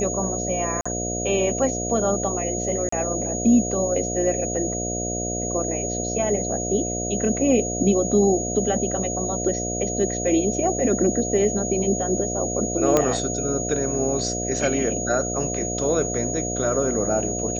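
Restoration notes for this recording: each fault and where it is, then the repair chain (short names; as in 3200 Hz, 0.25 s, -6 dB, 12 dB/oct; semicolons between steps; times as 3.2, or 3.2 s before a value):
buzz 60 Hz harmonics 12 -29 dBFS
tone 6700 Hz -28 dBFS
0.81–0.85 gap 45 ms
2.89–2.92 gap 34 ms
12.97 pop -5 dBFS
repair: de-click; de-hum 60 Hz, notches 12; notch 6700 Hz, Q 30; interpolate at 0.81, 45 ms; interpolate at 2.89, 34 ms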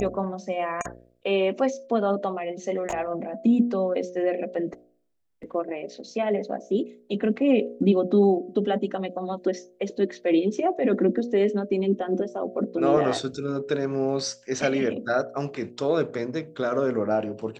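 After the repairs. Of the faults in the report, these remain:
none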